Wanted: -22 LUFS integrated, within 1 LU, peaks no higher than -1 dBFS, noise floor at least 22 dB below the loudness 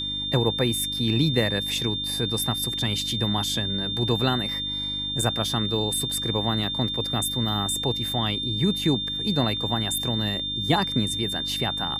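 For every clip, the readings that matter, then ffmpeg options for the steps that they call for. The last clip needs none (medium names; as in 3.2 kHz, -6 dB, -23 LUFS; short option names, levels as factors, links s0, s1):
hum 50 Hz; highest harmonic 300 Hz; hum level -36 dBFS; steady tone 3.6 kHz; tone level -27 dBFS; loudness -24.0 LUFS; peak level -8.5 dBFS; loudness target -22.0 LUFS
-> -af "bandreject=f=50:t=h:w=4,bandreject=f=100:t=h:w=4,bandreject=f=150:t=h:w=4,bandreject=f=200:t=h:w=4,bandreject=f=250:t=h:w=4,bandreject=f=300:t=h:w=4"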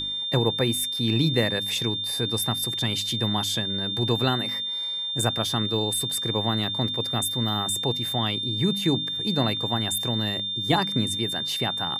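hum not found; steady tone 3.6 kHz; tone level -27 dBFS
-> -af "bandreject=f=3600:w=30"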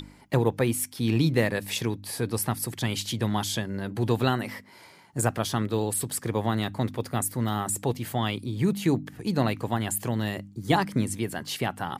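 steady tone not found; loudness -27.5 LUFS; peak level -10.0 dBFS; loudness target -22.0 LUFS
-> -af "volume=1.88"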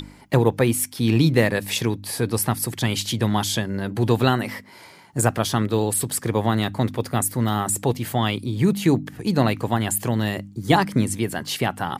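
loudness -22.0 LUFS; peak level -4.5 dBFS; noise floor -47 dBFS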